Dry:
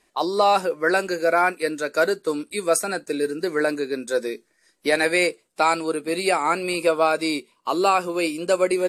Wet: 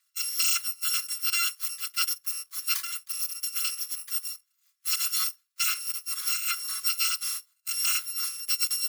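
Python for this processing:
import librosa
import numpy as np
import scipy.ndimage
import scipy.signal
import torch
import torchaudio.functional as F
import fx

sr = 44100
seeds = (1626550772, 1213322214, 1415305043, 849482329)

y = fx.bit_reversed(x, sr, seeds[0], block=256)
y = scipy.signal.sosfilt(scipy.signal.cheby1(8, 1.0, 1100.0, 'highpass', fs=sr, output='sos'), y)
y = y * librosa.db_to_amplitude(-7.0)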